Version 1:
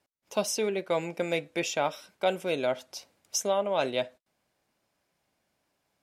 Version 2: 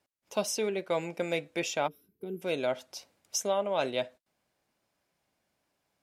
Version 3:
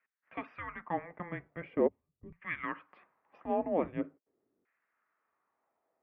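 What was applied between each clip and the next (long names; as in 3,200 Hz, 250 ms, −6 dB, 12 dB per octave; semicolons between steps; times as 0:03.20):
gain on a spectral selection 0:01.88–0:02.42, 470–11,000 Hz −26 dB; level −2 dB
single-sideband voice off tune −350 Hz 230–2,800 Hz; auto-filter band-pass saw down 0.43 Hz 310–1,900 Hz; level +8 dB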